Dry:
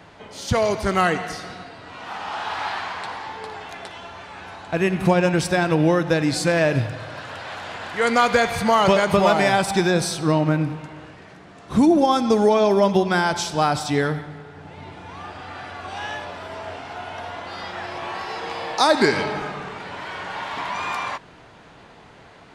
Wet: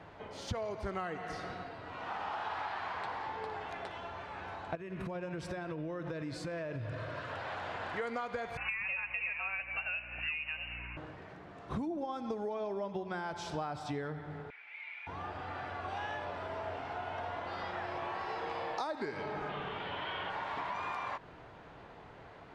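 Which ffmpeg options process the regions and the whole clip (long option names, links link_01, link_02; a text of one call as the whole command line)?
ffmpeg -i in.wav -filter_complex "[0:a]asettb=1/sr,asplit=3[link_01][link_02][link_03];[link_01]atrim=end=4.754[link_04];[link_02]atrim=start=4.75:end=7.32,asetpts=PTS-STARTPTS,afade=type=in:duration=0.004:curve=qsin,afade=type=out:start_time=2.566:duration=0.004:curve=qsin,asuperstop=centerf=800:order=4:qfactor=5,acompressor=threshold=-28dB:ratio=10:attack=3.2:release=140:knee=1:detection=peak[link_05];[link_03]atrim=start=7.316[link_06];[link_04][link_05]acrossfade=duration=0.004:curve1=hsin:curve2=qsin[link_07];[link_07][link_06]acrossfade=duration=0.004:curve1=qsin:curve2=hsin,asettb=1/sr,asplit=3[link_08][link_09][link_10];[link_08]atrim=end=8.574[link_11];[link_09]atrim=start=8.57:end=10.97,asetpts=PTS-STARTPTS,afade=type=in:duration=0.004:curve=qsin,afade=type=out:start_time=2.396:duration=0.004:curve=qsin,highpass=frequency=470:width_type=q:width=2.3,lowpass=frequency=2600:width_type=q:width=0.5098,lowpass=frequency=2600:width_type=q:width=0.6013,lowpass=frequency=2600:width_type=q:width=0.9,lowpass=frequency=2600:width_type=q:width=2.563,afreqshift=-3100,aeval=exprs='val(0)+0.00794*(sin(2*PI*60*n/s)+sin(2*PI*2*60*n/s)/2+sin(2*PI*3*60*n/s)/3+sin(2*PI*4*60*n/s)/4+sin(2*PI*5*60*n/s)/5)':channel_layout=same[link_12];[link_10]atrim=start=10.966[link_13];[link_11][link_12]acrossfade=duration=0.004:curve1=hsin:curve2=qsin[link_14];[link_14][link_13]acrossfade=duration=0.004:curve1=qsin:curve2=hsin,asettb=1/sr,asplit=3[link_15][link_16][link_17];[link_15]atrim=end=14.504[link_18];[link_16]atrim=start=14.5:end=15.07,asetpts=PTS-STARTPTS,afade=type=in:duration=0.004:curve=qsin,afade=type=out:start_time=0.566:duration=0.004:curve=qsin,highpass=frequency=2300:width_type=q:width=16,aemphasis=mode=reproduction:type=75kf[link_19];[link_17]atrim=start=15.066[link_20];[link_18][link_19]acrossfade=duration=0.004:curve1=hsin:curve2=qsin[link_21];[link_21][link_20]acrossfade=duration=0.004:curve1=qsin:curve2=hsin,asettb=1/sr,asplit=3[link_22][link_23][link_24];[link_22]atrim=end=19.494[link_25];[link_23]atrim=start=19.49:end=20.3,asetpts=PTS-STARTPTS,afade=type=in:duration=0.004:curve=qsin,afade=type=out:start_time=0.806:duration=0.004:curve=qsin,acrossover=split=3800[link_26][link_27];[link_27]acompressor=threshold=-58dB:ratio=4:attack=1:release=60[link_28];[link_26][link_28]amix=inputs=2:normalize=0,equalizer=frequency=3200:width_type=o:width=0.47:gain=14.5[link_29];[link_24]atrim=start=20.296[link_30];[link_25][link_29]acrossfade=duration=0.004:curve1=hsin:curve2=qsin[link_31];[link_31][link_30]acrossfade=duration=0.004:curve1=qsin:curve2=hsin,lowpass=frequency=1500:poles=1,equalizer=frequency=210:width=1.3:gain=-4.5,acompressor=threshold=-31dB:ratio=10,volume=-3.5dB" out.wav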